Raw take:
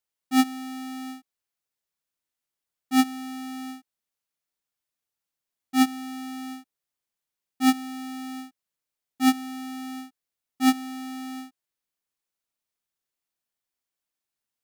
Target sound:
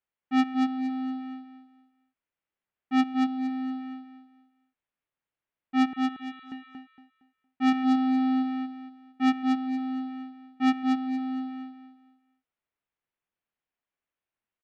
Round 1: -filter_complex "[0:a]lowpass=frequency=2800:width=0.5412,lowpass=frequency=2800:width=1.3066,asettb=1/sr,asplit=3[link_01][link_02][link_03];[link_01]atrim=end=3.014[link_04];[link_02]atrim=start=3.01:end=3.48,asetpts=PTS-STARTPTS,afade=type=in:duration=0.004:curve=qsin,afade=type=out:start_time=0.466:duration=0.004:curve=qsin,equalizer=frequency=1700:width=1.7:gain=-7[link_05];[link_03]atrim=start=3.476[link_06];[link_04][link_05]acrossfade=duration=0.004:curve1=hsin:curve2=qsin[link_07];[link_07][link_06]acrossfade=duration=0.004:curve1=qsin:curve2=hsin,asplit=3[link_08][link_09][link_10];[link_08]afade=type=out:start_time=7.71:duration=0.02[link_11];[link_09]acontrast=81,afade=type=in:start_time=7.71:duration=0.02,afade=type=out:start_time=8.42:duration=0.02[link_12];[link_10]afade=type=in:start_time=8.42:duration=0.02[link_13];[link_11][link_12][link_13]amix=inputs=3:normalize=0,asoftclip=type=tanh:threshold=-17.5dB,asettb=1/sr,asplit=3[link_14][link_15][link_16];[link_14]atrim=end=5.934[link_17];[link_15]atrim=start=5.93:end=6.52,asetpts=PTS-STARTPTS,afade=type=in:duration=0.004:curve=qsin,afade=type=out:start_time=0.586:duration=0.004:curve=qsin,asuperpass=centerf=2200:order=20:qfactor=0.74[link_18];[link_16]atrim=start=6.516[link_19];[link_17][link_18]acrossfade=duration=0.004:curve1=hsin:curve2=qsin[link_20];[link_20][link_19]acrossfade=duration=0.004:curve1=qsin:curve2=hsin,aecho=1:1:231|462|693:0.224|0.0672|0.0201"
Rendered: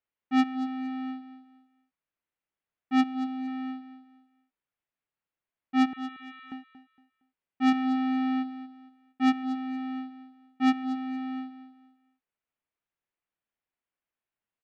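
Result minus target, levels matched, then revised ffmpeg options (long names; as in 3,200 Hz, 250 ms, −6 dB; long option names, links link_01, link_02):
echo-to-direct −9 dB
-filter_complex "[0:a]lowpass=frequency=2800:width=0.5412,lowpass=frequency=2800:width=1.3066,asettb=1/sr,asplit=3[link_01][link_02][link_03];[link_01]atrim=end=3.014[link_04];[link_02]atrim=start=3.01:end=3.48,asetpts=PTS-STARTPTS,afade=type=in:duration=0.004:curve=qsin,afade=type=out:start_time=0.466:duration=0.004:curve=qsin,equalizer=frequency=1700:width=1.7:gain=-7[link_05];[link_03]atrim=start=3.476[link_06];[link_04][link_05]acrossfade=duration=0.004:curve1=hsin:curve2=qsin[link_07];[link_07][link_06]acrossfade=duration=0.004:curve1=qsin:curve2=hsin,asplit=3[link_08][link_09][link_10];[link_08]afade=type=out:start_time=7.71:duration=0.02[link_11];[link_09]acontrast=81,afade=type=in:start_time=7.71:duration=0.02,afade=type=out:start_time=8.42:duration=0.02[link_12];[link_10]afade=type=in:start_time=8.42:duration=0.02[link_13];[link_11][link_12][link_13]amix=inputs=3:normalize=0,asoftclip=type=tanh:threshold=-17.5dB,asettb=1/sr,asplit=3[link_14][link_15][link_16];[link_14]atrim=end=5.934[link_17];[link_15]atrim=start=5.93:end=6.52,asetpts=PTS-STARTPTS,afade=type=in:duration=0.004:curve=qsin,afade=type=out:start_time=0.586:duration=0.004:curve=qsin,asuperpass=centerf=2200:order=20:qfactor=0.74[link_18];[link_16]atrim=start=6.516[link_19];[link_17][link_18]acrossfade=duration=0.004:curve1=hsin:curve2=qsin[link_20];[link_20][link_19]acrossfade=duration=0.004:curve1=qsin:curve2=hsin,aecho=1:1:231|462|693|924:0.631|0.189|0.0568|0.017"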